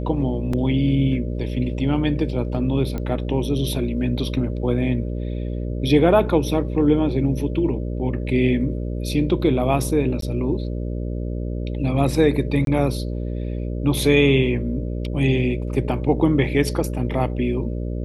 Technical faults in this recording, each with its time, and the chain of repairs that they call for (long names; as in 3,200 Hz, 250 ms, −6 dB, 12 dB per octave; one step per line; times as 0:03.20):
mains buzz 60 Hz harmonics 10 −26 dBFS
0:00.53: drop-out 4 ms
0:02.98: click −16 dBFS
0:10.21–0:10.22: drop-out 13 ms
0:12.65–0:12.67: drop-out 22 ms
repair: click removal
hum removal 60 Hz, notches 10
repair the gap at 0:00.53, 4 ms
repair the gap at 0:10.21, 13 ms
repair the gap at 0:12.65, 22 ms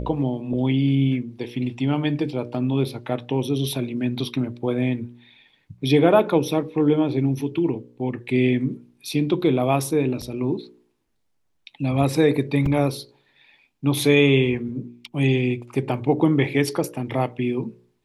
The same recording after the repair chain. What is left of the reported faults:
none of them is left